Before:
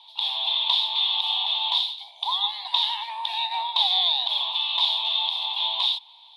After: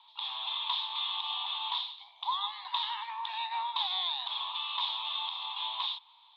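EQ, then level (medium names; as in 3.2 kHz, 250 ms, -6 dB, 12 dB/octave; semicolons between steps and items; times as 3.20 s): ladder band-pass 1.4 kHz, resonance 65%; +7.5 dB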